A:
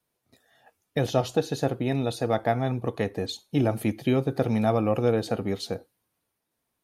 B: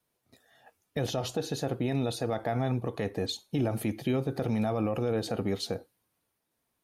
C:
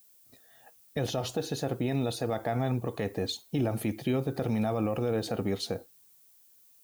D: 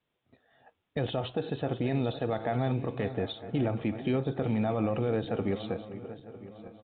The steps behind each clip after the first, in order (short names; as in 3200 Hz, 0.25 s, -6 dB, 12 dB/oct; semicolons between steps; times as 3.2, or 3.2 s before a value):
limiter -19.5 dBFS, peak gain reduction 10.5 dB
added noise violet -60 dBFS
regenerating reverse delay 0.477 s, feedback 60%, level -12.5 dB; downsampling 8000 Hz; mismatched tape noise reduction decoder only